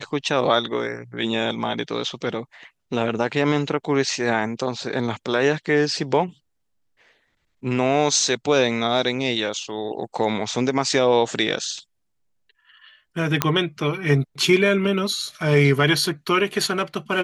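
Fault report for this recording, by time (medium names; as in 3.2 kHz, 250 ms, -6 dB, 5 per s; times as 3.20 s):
13.42 s: pop -1 dBFS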